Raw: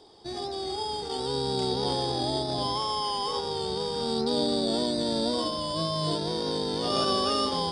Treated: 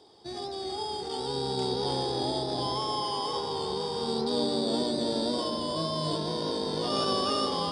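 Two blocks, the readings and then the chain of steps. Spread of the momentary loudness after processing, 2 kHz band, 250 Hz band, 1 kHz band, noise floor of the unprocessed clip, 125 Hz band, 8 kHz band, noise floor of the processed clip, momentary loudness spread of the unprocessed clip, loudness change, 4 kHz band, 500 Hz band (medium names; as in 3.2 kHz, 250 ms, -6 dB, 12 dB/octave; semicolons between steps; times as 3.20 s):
6 LU, -2.0 dB, -1.5 dB, -1.5 dB, -35 dBFS, -2.0 dB, -2.5 dB, -37 dBFS, 6 LU, -2.0 dB, -2.5 dB, -1.5 dB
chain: high-pass 68 Hz; tape echo 352 ms, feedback 69%, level -6 dB, low-pass 2 kHz; trim -2.5 dB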